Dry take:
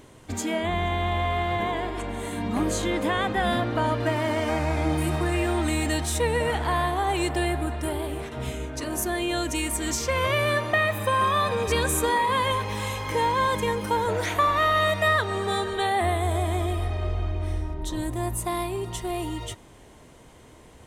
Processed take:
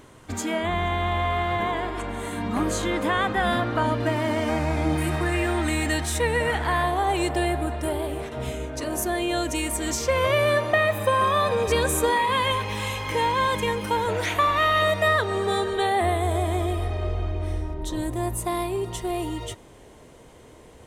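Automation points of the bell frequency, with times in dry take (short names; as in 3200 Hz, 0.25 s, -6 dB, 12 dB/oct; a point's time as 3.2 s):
bell +5 dB 0.82 oct
1300 Hz
from 3.83 s 210 Hz
from 4.96 s 1800 Hz
from 6.83 s 570 Hz
from 12.13 s 2700 Hz
from 14.82 s 470 Hz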